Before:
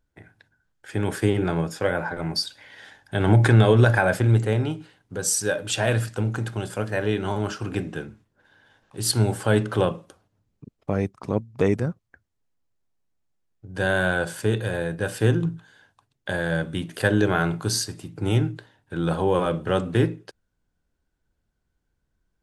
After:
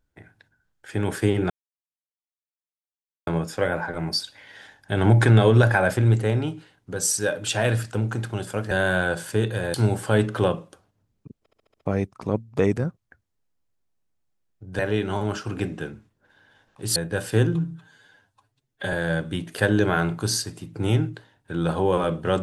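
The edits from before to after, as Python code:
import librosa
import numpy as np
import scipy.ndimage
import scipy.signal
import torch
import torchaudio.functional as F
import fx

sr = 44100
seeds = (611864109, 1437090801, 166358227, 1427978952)

y = fx.edit(x, sr, fx.insert_silence(at_s=1.5, length_s=1.77),
    fx.swap(start_s=6.94, length_s=2.17, other_s=13.81, other_length_s=1.03),
    fx.stutter(start_s=10.76, slice_s=0.07, count=6),
    fx.stretch_span(start_s=15.43, length_s=0.92, factor=1.5), tone=tone)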